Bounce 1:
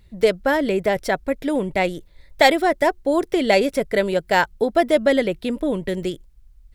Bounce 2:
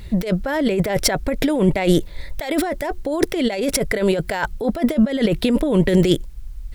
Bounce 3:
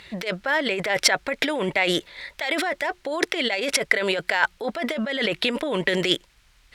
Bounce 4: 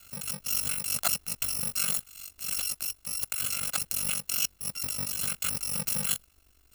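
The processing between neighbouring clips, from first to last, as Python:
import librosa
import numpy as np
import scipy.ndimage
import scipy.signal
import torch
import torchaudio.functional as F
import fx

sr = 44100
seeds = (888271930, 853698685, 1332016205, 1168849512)

y1 = fx.over_compress(x, sr, threshold_db=-28.0, ratio=-1.0)
y1 = F.gain(torch.from_numpy(y1), 9.0).numpy()
y2 = fx.bandpass_q(y1, sr, hz=2300.0, q=0.79)
y2 = F.gain(torch.from_numpy(y2), 6.0).numpy()
y3 = fx.bit_reversed(y2, sr, seeds[0], block=128)
y3 = y3 * np.sin(2.0 * np.pi * 24.0 * np.arange(len(y3)) / sr)
y3 = fx.transient(y3, sr, attack_db=-3, sustain_db=1)
y3 = F.gain(torch.from_numpy(y3), -3.0).numpy()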